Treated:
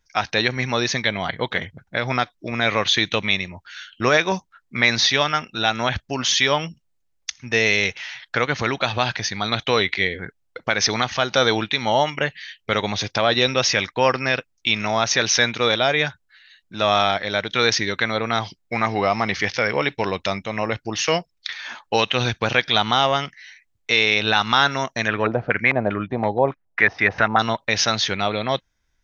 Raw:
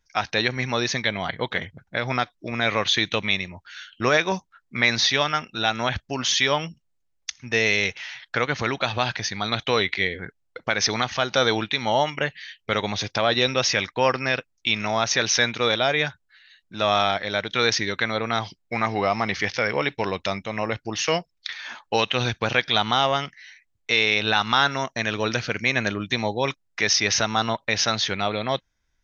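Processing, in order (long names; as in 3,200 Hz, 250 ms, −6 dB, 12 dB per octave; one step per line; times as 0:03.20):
0:25.07–0:27.38: auto-filter low-pass square 1.8 Hz → 5.9 Hz 740–1,800 Hz
level +2.5 dB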